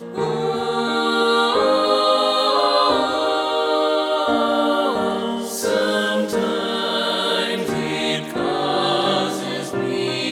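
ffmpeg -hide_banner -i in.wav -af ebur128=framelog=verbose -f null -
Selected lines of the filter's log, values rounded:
Integrated loudness:
  I:         -19.3 LUFS
  Threshold: -29.3 LUFS
Loudness range:
  LRA:         3.3 LU
  Threshold: -39.2 LUFS
  LRA low:   -20.8 LUFS
  LRA high:  -17.4 LUFS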